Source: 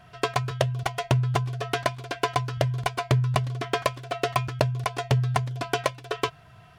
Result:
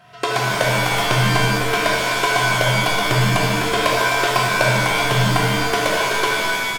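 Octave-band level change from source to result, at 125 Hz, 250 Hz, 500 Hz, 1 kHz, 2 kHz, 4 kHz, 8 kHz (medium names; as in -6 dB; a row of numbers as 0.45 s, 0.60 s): +3.5 dB, +10.0 dB, +8.5 dB, +10.0 dB, +16.5 dB, +14.0 dB, +15.0 dB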